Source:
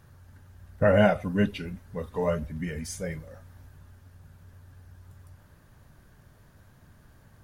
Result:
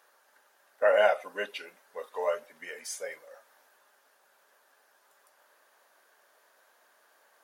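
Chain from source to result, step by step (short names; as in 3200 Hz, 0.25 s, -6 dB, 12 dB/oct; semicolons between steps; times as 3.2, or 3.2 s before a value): HPF 500 Hz 24 dB/oct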